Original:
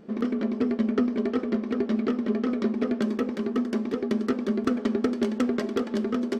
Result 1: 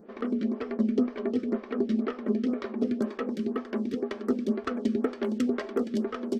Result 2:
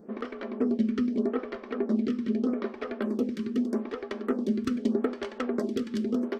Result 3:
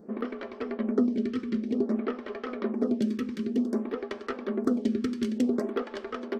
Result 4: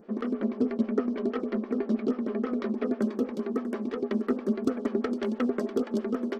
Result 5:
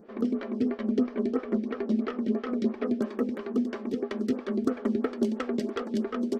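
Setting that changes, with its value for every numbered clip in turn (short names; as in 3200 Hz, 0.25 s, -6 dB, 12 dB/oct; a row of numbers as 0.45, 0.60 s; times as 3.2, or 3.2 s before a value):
photocell phaser, rate: 2, 0.81, 0.54, 6.2, 3 Hz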